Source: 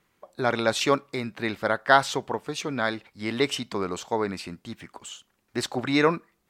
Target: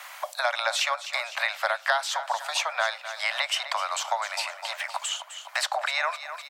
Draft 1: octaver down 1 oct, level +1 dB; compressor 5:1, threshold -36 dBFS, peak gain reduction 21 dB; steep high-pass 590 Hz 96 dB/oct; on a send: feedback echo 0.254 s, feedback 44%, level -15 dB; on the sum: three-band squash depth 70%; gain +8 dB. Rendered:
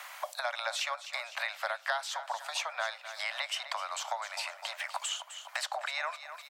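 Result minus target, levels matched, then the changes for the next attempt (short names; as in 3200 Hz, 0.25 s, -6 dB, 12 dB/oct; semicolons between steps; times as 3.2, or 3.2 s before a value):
compressor: peak gain reduction +8.5 dB
change: compressor 5:1, threshold -25.5 dBFS, peak gain reduction 13 dB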